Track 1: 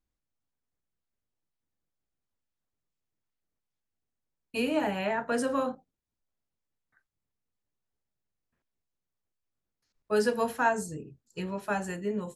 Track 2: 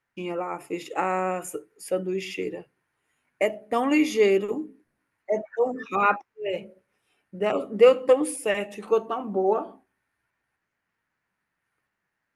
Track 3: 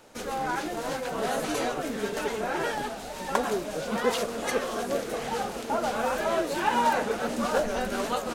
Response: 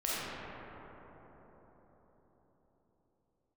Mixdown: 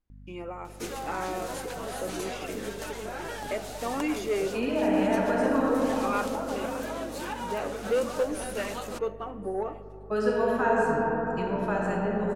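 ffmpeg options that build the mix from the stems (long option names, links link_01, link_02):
-filter_complex "[0:a]lowpass=frequency=2300:poles=1,volume=-1dB,asplit=3[link_01][link_02][link_03];[link_02]volume=-4.5dB[link_04];[1:a]aeval=exprs='val(0)+0.0126*(sin(2*PI*50*n/s)+sin(2*PI*2*50*n/s)/2+sin(2*PI*3*50*n/s)/3+sin(2*PI*4*50*n/s)/4+sin(2*PI*5*50*n/s)/5)':channel_layout=same,asoftclip=type=tanh:threshold=-12dB,adelay=100,volume=-8.5dB,asplit=3[link_05][link_06][link_07];[link_06]volume=-21.5dB[link_08];[link_07]volume=-22dB[link_09];[2:a]highshelf=frequency=4900:gain=6,adelay=650,volume=-2.5dB[link_10];[link_03]apad=whole_len=396479[link_11];[link_10][link_11]sidechaincompress=threshold=-32dB:ratio=8:attack=16:release=520[link_12];[link_01][link_12]amix=inputs=2:normalize=0,acompressor=threshold=-33dB:ratio=6,volume=0dB[link_13];[3:a]atrim=start_sample=2205[link_14];[link_04][link_08]amix=inputs=2:normalize=0[link_15];[link_15][link_14]afir=irnorm=-1:irlink=0[link_16];[link_09]aecho=0:1:1082:1[link_17];[link_05][link_13][link_16][link_17]amix=inputs=4:normalize=0"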